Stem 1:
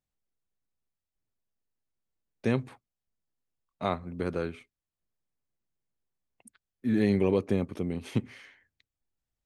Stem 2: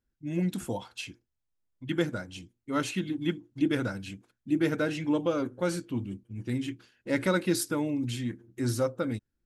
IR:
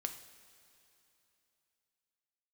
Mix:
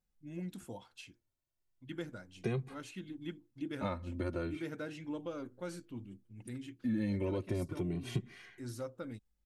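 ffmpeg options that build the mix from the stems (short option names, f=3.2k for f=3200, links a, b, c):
-filter_complex "[0:a]lowshelf=f=110:g=11.5,aecho=1:1:5.6:0.32,asplit=2[a][b];[b]adelay=2,afreqshift=0.33[c];[a][c]amix=inputs=2:normalize=1,volume=1dB,asplit=2[d][e];[1:a]volume=-13dB[f];[e]apad=whole_len=417130[g];[f][g]sidechaincompress=threshold=-29dB:ratio=8:attack=34:release=918[h];[d][h]amix=inputs=2:normalize=0,acompressor=threshold=-34dB:ratio=3"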